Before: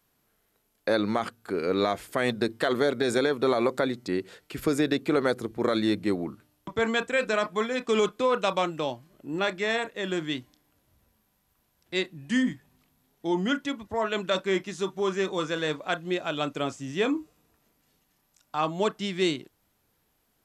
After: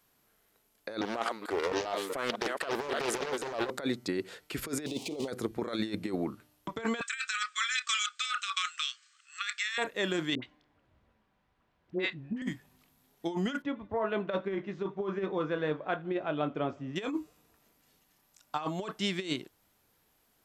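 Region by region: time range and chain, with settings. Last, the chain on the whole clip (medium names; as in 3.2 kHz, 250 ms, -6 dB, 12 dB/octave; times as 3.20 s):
1.01–3.70 s: chunks repeated in reverse 225 ms, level -9.5 dB + high-pass 370 Hz + loudspeaker Doppler distortion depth 0.49 ms
4.86–5.28 s: zero-crossing glitches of -20 dBFS + Chebyshev band-stop 800–2900 Hz + distance through air 100 m
7.01–9.78 s: brick-wall FIR band-pass 1.1–8.7 kHz + tilt EQ +3 dB/octave
10.35–12.42 s: low-pass 2.5 kHz + phase dispersion highs, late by 75 ms, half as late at 720 Hz
13.62–16.96 s: tape spacing loss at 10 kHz 45 dB + doubling 20 ms -11.5 dB + modulated delay 81 ms, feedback 56%, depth 82 cents, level -24 dB
whole clip: bass shelf 320 Hz -4.5 dB; compressor with a negative ratio -30 dBFS, ratio -0.5; trim -1 dB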